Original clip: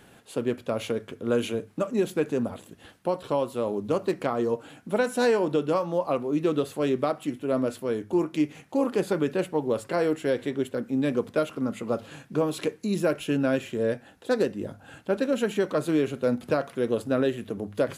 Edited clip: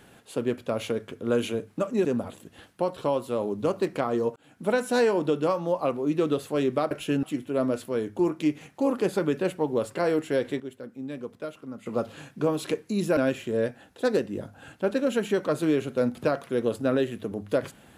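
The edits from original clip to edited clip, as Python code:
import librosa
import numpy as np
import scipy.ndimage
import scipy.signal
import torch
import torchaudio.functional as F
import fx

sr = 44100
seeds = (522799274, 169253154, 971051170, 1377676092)

y = fx.edit(x, sr, fx.cut(start_s=2.05, length_s=0.26),
    fx.fade_in_span(start_s=4.62, length_s=0.3),
    fx.clip_gain(start_s=10.54, length_s=1.26, db=-10.5),
    fx.move(start_s=13.11, length_s=0.32, to_s=7.17), tone=tone)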